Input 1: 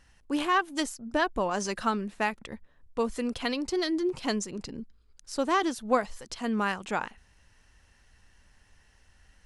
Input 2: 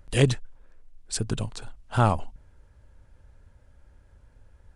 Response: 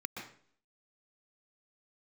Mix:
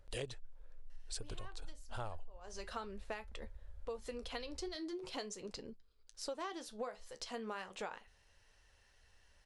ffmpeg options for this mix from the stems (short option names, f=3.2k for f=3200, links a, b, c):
-filter_complex "[0:a]flanger=delay=8.5:depth=4.8:regen=-63:speed=0.4:shape=sinusoidal,adelay=900,volume=-3.5dB[a];[1:a]asubboost=boost=9.5:cutoff=67,volume=-9.5dB,asplit=2[b][c];[c]apad=whole_len=456864[d];[a][d]sidechaincompress=threshold=-42dB:ratio=10:attack=16:release=429[e];[e][b]amix=inputs=2:normalize=0,equalizer=f=125:t=o:w=1:g=-4,equalizer=f=250:t=o:w=1:g=-7,equalizer=f=500:t=o:w=1:g=7,equalizer=f=4k:t=o:w=1:g=5,acompressor=threshold=-40dB:ratio=6"